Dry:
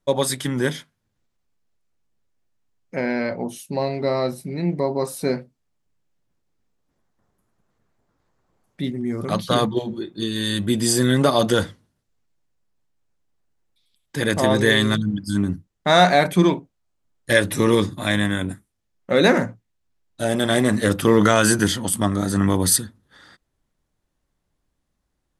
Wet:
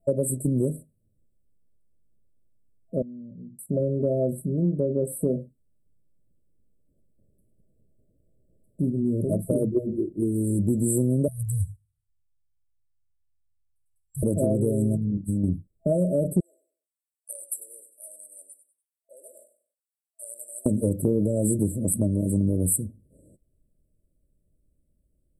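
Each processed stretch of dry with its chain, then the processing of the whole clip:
3.02–3.59 Butterworth band-pass 160 Hz, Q 1.5 + compressor 2.5:1, threshold -42 dBFS + low shelf 150 Hz -8 dB
9.24–10.59 notches 60/120 Hz + comb 2.8 ms, depth 34%
11.28–14.23 gate -51 dBFS, range -8 dB + inverse Chebyshev band-stop 210–980 Hz
14.97–15.44 level quantiser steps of 9 dB + Doppler distortion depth 0.21 ms
16.4–20.66 compressor 3:1, threshold -17 dBFS + HPF 1200 Hz 24 dB/oct + feedback echo 96 ms, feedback 30%, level -12.5 dB
whole clip: FFT band-reject 660–7600 Hz; low shelf 170 Hz +7.5 dB; compressor 4:1, threshold -20 dBFS

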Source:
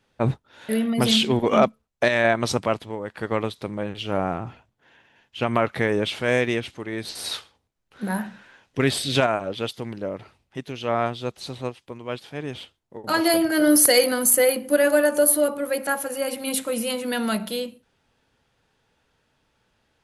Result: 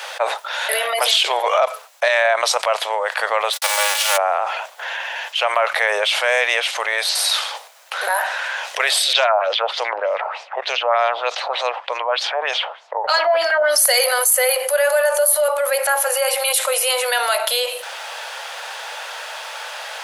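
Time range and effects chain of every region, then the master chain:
3.52–4.16 spectral whitening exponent 0.3 + gate -46 dBFS, range -53 dB + comb 3.5 ms, depth 86%
9.13–13.78 LFO low-pass sine 3.3 Hz 810–6200 Hz + mismatched tape noise reduction decoder only
whole clip: steep high-pass 560 Hz 48 dB/oct; fast leveller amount 70%

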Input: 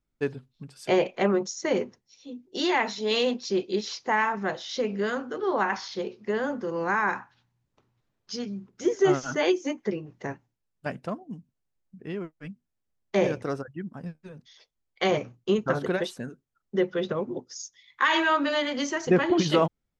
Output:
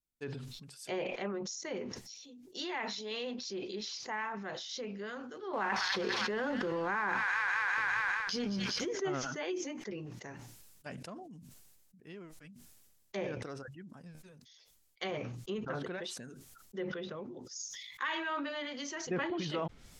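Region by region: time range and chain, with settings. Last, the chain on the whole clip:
5.53–8.89 G.711 law mismatch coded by A + thin delay 0.201 s, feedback 59%, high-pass 2000 Hz, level -8 dB + fast leveller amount 100%
whole clip: treble ducked by the level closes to 2700 Hz, closed at -22.5 dBFS; pre-emphasis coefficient 0.8; sustainer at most 32 dB/s; gain -1.5 dB

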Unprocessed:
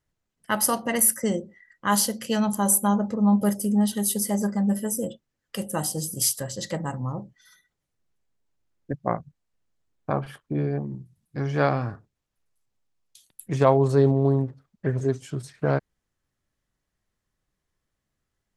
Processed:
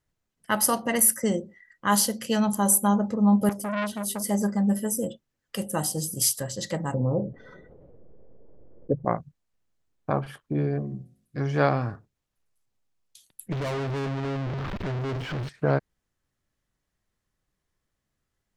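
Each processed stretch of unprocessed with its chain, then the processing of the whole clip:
3.49–4.24 high shelf 4300 Hz -6 dB + core saturation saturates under 1500 Hz
6.94–9.05 synth low-pass 500 Hz, resonance Q 4 + fast leveller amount 50%
10.74–11.41 Butterworth band-stop 870 Hz, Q 4.3 + de-hum 51.78 Hz, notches 14
13.52–15.49 zero-crossing step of -20.5 dBFS + air absorption 370 m + tube stage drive 28 dB, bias 0.45
whole clip: dry

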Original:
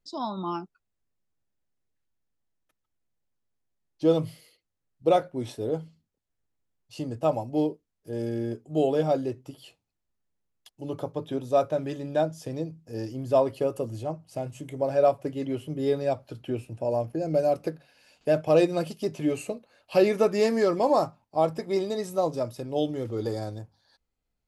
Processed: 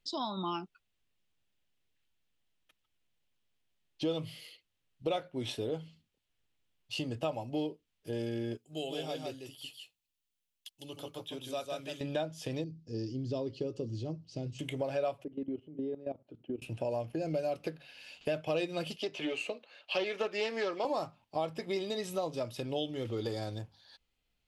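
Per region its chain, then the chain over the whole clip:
8.57–12.01 pre-emphasis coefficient 0.8 + echo 0.154 s -4 dB
12.64–14.59 LPF 5600 Hz 24 dB/oct + band shelf 1400 Hz -15.5 dB 2.8 oct
15.24–16.62 band-pass 300 Hz, Q 1.6 + level quantiser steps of 16 dB
18.96–20.85 three-band isolator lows -17 dB, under 310 Hz, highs -13 dB, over 6400 Hz + Doppler distortion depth 0.15 ms
whole clip: bell 3000 Hz +13 dB 1.1 oct; compressor 3:1, threshold -34 dBFS

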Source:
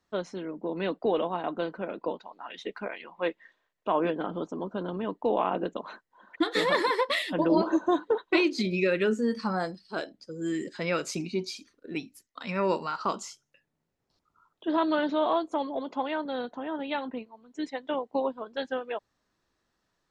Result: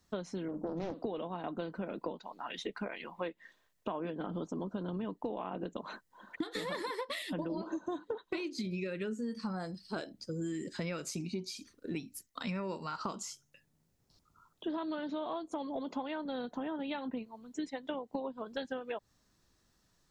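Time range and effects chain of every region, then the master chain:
0.48–1.04 bell 2400 Hz -9.5 dB 1.8 oct + flutter echo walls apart 8.4 m, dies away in 0.23 s + Doppler distortion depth 0.53 ms
whole clip: tone controls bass +9 dB, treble +10 dB; compressor 12:1, threshold -34 dBFS; dynamic EQ 5700 Hz, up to -4 dB, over -56 dBFS, Q 0.78

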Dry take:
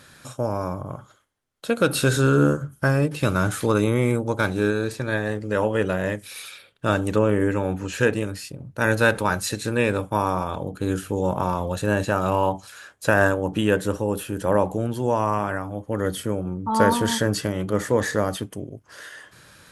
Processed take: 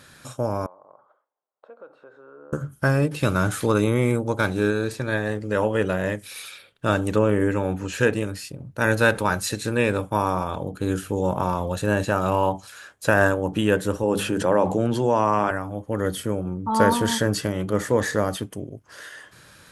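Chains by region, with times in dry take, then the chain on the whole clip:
0.66–2.53 compressor 2.5:1, threshold -38 dBFS + dynamic EQ 710 Hz, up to -5 dB, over -49 dBFS, Q 0.89 + Butterworth band-pass 740 Hz, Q 1.2
14.03–15.51 BPF 120–7400 Hz + notches 50/100/150/200/250 Hz + fast leveller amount 50%
whole clip: dry

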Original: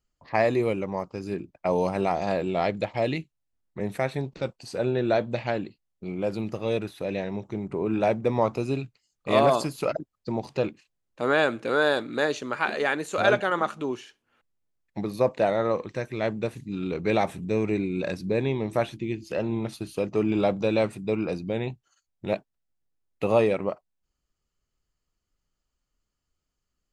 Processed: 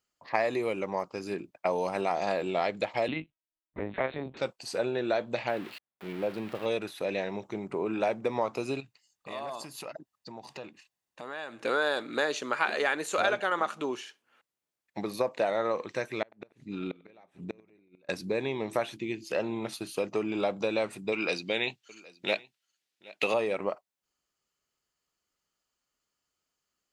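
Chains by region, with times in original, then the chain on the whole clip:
3.08–4.37 low shelf 160 Hz +11 dB + doubler 25 ms -4 dB + LPC vocoder at 8 kHz pitch kept
5.48–6.66 switching spikes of -20 dBFS + HPF 42 Hz + air absorption 500 m
8.8–11.63 comb 1.1 ms, depth 31% + compressor 3:1, threshold -41 dBFS
16.22–18.09 LPF 2600 Hz 6 dB/oct + flipped gate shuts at -20 dBFS, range -34 dB + warbling echo 94 ms, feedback 44%, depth 92 cents, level -24 dB
21.12–23.34 weighting filter D + echo 0.77 s -23.5 dB
whole clip: compressor, threshold -24 dBFS; HPF 540 Hz 6 dB/oct; gain +3 dB

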